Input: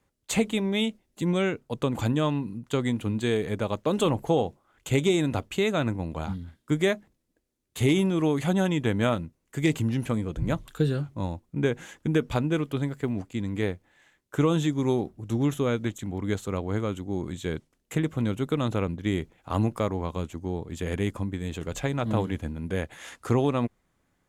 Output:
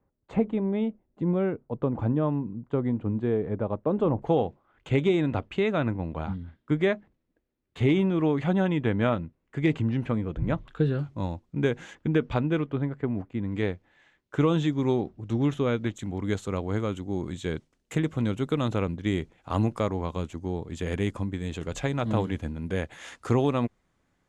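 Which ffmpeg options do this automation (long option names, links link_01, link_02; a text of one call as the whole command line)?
ffmpeg -i in.wav -af "asetnsamples=nb_out_samples=441:pad=0,asendcmd='4.22 lowpass f 2600;10.99 lowpass f 5900;11.95 lowpass f 3200;12.65 lowpass f 1800;13.52 lowpass f 4400;15.97 lowpass f 7900',lowpass=1000" out.wav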